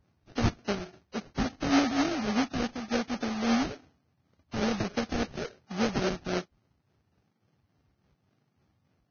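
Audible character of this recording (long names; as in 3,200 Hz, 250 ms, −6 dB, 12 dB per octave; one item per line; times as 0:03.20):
phaser sweep stages 8, 3.5 Hz, lowest notch 410–1,100 Hz
aliases and images of a low sample rate 1,000 Hz, jitter 20%
Ogg Vorbis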